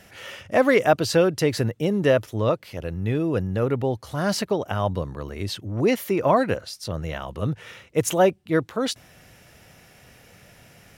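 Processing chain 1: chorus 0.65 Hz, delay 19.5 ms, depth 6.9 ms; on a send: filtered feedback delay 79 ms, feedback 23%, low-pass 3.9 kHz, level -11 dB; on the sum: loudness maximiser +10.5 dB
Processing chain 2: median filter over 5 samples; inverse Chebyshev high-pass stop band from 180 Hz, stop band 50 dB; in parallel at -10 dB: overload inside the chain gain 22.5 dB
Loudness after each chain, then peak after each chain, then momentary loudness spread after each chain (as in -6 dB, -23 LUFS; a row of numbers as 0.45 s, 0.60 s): -16.5 LUFS, -25.0 LUFS; -1.0 dBFS, -6.0 dBFS; 11 LU, 15 LU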